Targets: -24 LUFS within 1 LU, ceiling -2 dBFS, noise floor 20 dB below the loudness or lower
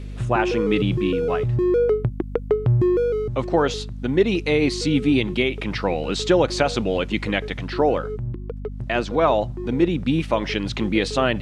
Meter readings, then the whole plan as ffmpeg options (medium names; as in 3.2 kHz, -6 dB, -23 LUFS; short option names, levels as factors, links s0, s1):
hum 50 Hz; highest harmonic 250 Hz; hum level -30 dBFS; loudness -21.5 LUFS; peak level -3.5 dBFS; loudness target -24.0 LUFS
-> -af "bandreject=f=50:t=h:w=6,bandreject=f=100:t=h:w=6,bandreject=f=150:t=h:w=6,bandreject=f=200:t=h:w=6,bandreject=f=250:t=h:w=6"
-af "volume=0.75"